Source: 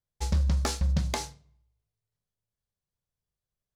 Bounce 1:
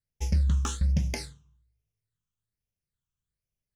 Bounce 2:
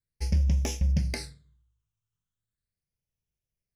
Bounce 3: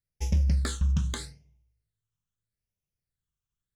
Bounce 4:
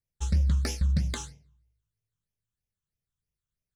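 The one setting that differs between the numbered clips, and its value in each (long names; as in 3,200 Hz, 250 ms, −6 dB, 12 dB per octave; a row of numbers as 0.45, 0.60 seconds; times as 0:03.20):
all-pass phaser, speed: 1.2, 0.38, 0.8, 3.1 Hertz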